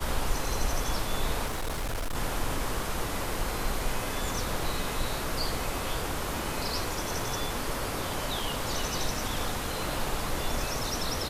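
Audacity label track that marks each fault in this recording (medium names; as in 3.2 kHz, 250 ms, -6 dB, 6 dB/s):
1.460000	2.160000	clipped -28 dBFS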